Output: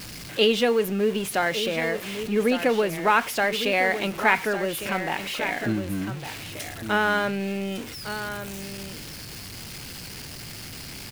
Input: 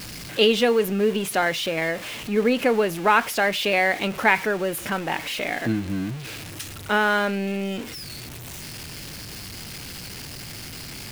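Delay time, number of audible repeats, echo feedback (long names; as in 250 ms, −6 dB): 1,156 ms, 1, repeats not evenly spaced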